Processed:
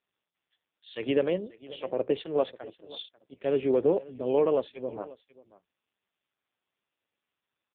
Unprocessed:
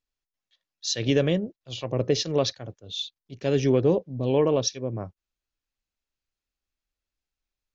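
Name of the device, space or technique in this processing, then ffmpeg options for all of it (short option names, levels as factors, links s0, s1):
satellite phone: -af "highpass=340,lowpass=3300,aecho=1:1:539:0.106" -ar 8000 -c:a libopencore_amrnb -b:a 5150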